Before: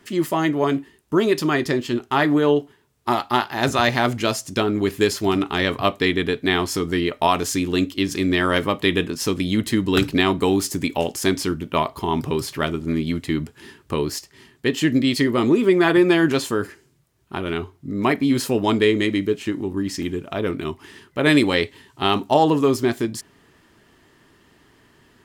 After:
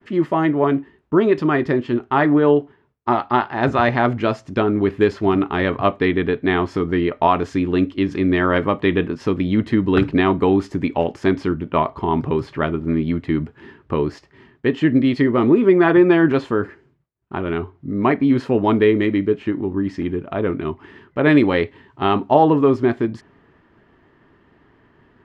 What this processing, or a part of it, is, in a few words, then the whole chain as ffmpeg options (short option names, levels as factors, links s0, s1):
hearing-loss simulation: -af "lowpass=1800,agate=range=0.0224:threshold=0.002:ratio=3:detection=peak,volume=1.41"